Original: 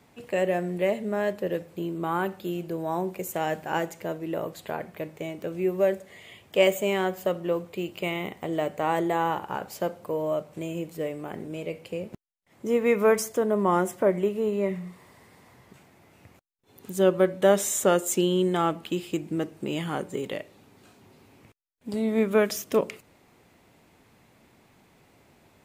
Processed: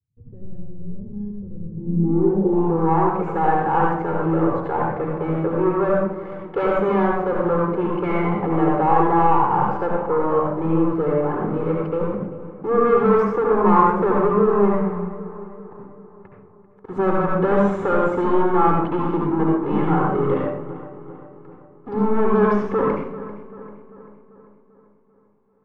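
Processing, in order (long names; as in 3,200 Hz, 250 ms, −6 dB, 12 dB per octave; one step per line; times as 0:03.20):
notch comb filter 630 Hz
leveller curve on the samples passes 5
high-shelf EQ 8,000 Hz −8 dB
feedback echo with a low-pass in the loop 392 ms, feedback 56%, low-pass 3,000 Hz, level −15 dB
convolution reverb RT60 0.65 s, pre-delay 67 ms, DRR −1 dB
low-pass filter sweep 100 Hz → 1,200 Hz, 0:01.64–0:02.88
level −11.5 dB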